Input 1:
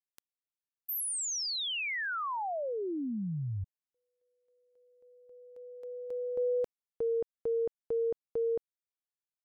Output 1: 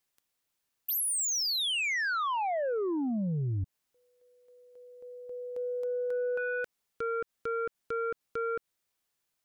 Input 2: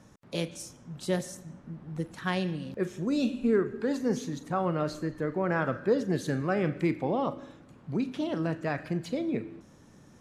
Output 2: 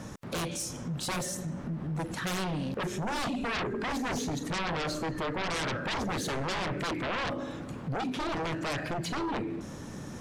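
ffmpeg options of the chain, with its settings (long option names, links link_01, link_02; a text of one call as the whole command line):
ffmpeg -i in.wav -af "aeval=exprs='0.2*sin(PI/2*7.94*val(0)/0.2)':channel_layout=same,acompressor=threshold=-22dB:ratio=6:attack=0.49:release=193:knee=1:detection=rms,volume=-8dB" out.wav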